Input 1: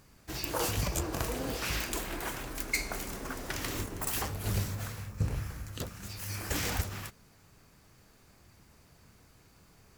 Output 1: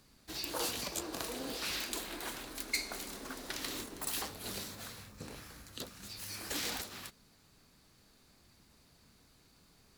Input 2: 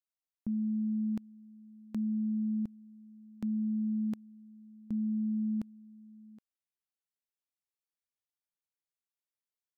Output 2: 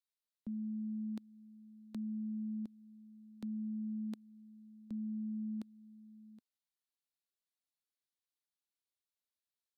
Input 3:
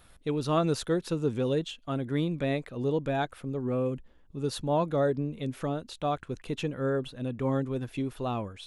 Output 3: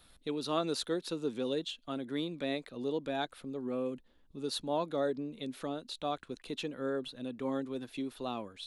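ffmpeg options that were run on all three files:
-filter_complex "[0:a]equalizer=f=100:t=o:w=0.67:g=-4,equalizer=f=250:t=o:w=0.67:g=4,equalizer=f=4k:t=o:w=0.67:g=9,equalizer=f=10k:t=o:w=0.67:g=4,acrossover=split=220|1500[a][b][c];[a]acompressor=threshold=-48dB:ratio=6[d];[d][b][c]amix=inputs=3:normalize=0,volume=-6dB"

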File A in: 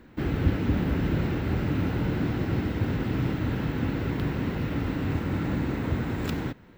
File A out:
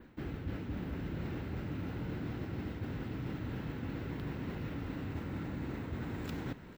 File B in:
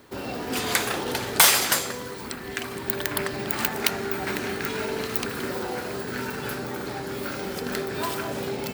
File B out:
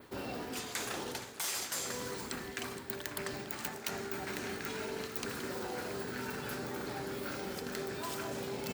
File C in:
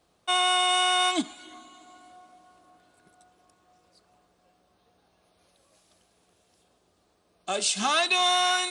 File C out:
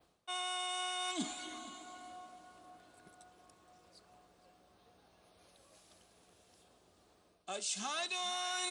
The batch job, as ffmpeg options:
-af "adynamicequalizer=threshold=0.00631:dfrequency=6700:dqfactor=1.4:tfrequency=6700:tqfactor=1.4:attack=5:release=100:ratio=0.375:range=3:mode=boostabove:tftype=bell,areverse,acompressor=threshold=-37dB:ratio=6,areverse,aecho=1:1:470:0.158"

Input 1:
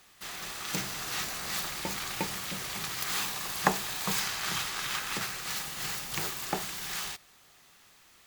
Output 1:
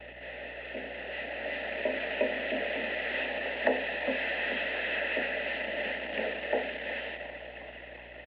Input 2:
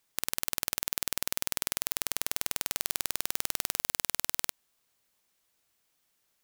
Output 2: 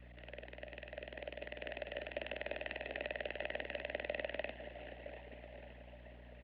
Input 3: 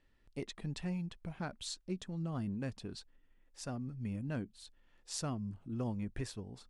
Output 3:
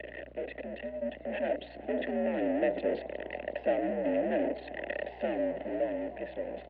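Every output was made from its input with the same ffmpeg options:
-filter_complex "[0:a]aeval=exprs='val(0)+0.5*0.0841*sgn(val(0))':c=same,aemphasis=mode=reproduction:type=bsi,bandreject=f=60:t=h:w=6,bandreject=f=120:t=h:w=6,bandreject=f=180:t=h:w=6,bandreject=f=240:t=h:w=6,bandreject=f=300:t=h:w=6,bandreject=f=360:t=h:w=6,bandreject=f=420:t=h:w=6,bandreject=f=480:t=h:w=6,bandreject=f=540:t=h:w=6,anlmdn=63.1,asplit=3[a][b][c];[a]bandpass=f=530:t=q:w=8,volume=0dB[d];[b]bandpass=f=1.84k:t=q:w=8,volume=-6dB[e];[c]bandpass=f=2.48k:t=q:w=8,volume=-9dB[f];[d][e][f]amix=inputs=3:normalize=0,dynaudnorm=f=270:g=11:m=9dB,acrusher=bits=10:mix=0:aa=0.000001,asoftclip=type=tanh:threshold=-14.5dB,highpass=f=160:t=q:w=0.5412,highpass=f=160:t=q:w=1.307,lowpass=f=3.4k:t=q:w=0.5176,lowpass=f=3.4k:t=q:w=0.7071,lowpass=f=3.4k:t=q:w=1.932,afreqshift=66,aeval=exprs='val(0)+0.000891*(sin(2*PI*60*n/s)+sin(2*PI*2*60*n/s)/2+sin(2*PI*3*60*n/s)/3+sin(2*PI*4*60*n/s)/4+sin(2*PI*5*60*n/s)/5)':c=same,lowshelf=f=360:g=6.5,asplit=7[g][h][i][j][k][l][m];[h]adelay=361,afreqshift=60,volume=-18dB[n];[i]adelay=722,afreqshift=120,volume=-22.3dB[o];[j]adelay=1083,afreqshift=180,volume=-26.6dB[p];[k]adelay=1444,afreqshift=240,volume=-30.9dB[q];[l]adelay=1805,afreqshift=300,volume=-35.2dB[r];[m]adelay=2166,afreqshift=360,volume=-39.5dB[s];[g][n][o][p][q][r][s]amix=inputs=7:normalize=0"

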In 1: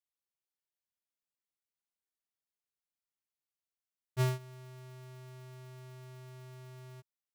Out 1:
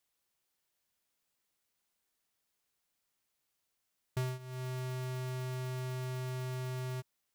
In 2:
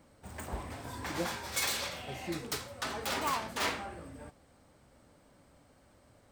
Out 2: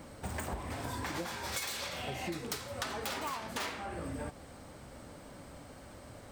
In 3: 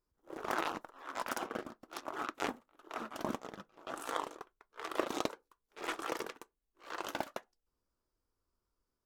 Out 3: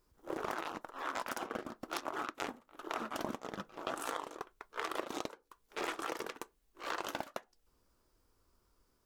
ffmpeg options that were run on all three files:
-af "acompressor=threshold=-47dB:ratio=12,volume=12dB"

